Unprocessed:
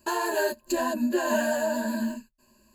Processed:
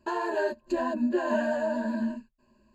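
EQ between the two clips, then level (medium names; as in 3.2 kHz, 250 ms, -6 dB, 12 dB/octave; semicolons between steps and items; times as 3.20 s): tape spacing loss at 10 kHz 25 dB; 0.0 dB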